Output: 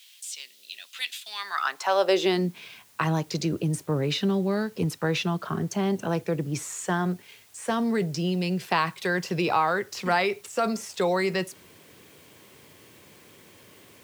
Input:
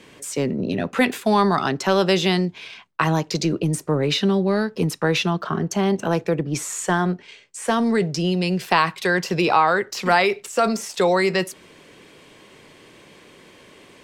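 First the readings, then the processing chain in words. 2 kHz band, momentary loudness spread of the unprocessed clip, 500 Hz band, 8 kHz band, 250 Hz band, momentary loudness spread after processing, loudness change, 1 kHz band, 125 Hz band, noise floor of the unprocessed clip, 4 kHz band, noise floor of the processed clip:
−6.5 dB, 7 LU, −6.0 dB, −6.0 dB, −6.0 dB, 12 LU, −6.0 dB, −6.5 dB, −4.5 dB, −49 dBFS, −6.0 dB, −54 dBFS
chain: background noise white −51 dBFS
high-pass filter sweep 3,400 Hz → 86 Hz, 0:01.23–0:02.87
level −6.5 dB

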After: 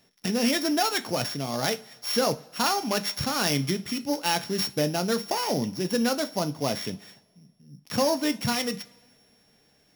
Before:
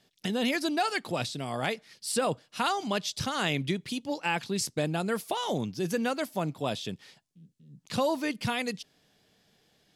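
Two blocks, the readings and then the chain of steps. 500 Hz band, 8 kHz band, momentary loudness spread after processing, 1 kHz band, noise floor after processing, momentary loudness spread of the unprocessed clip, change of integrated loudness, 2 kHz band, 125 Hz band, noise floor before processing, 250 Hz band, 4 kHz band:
+3.5 dB, +5.5 dB, 6 LU, +2.5 dB, −64 dBFS, 6 LU, +4.0 dB, +1.0 dB, +2.5 dB, −69 dBFS, +4.0 dB, +5.5 dB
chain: samples sorted by size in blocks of 8 samples
coupled-rooms reverb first 0.26 s, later 1.6 s, from −21 dB, DRR 8.5 dB
level +3 dB

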